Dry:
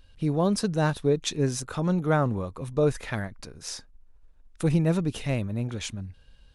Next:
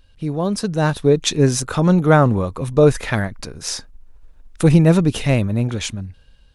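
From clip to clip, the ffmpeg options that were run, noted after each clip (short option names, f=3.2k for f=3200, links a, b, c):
-af "dynaudnorm=f=210:g=9:m=10dB,volume=2dB"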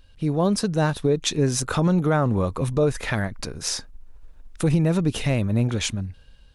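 -af "alimiter=limit=-11dB:level=0:latency=1:release=274"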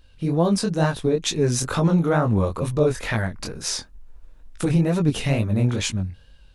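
-af "flanger=delay=17.5:depth=7.2:speed=2.2,volume=3.5dB"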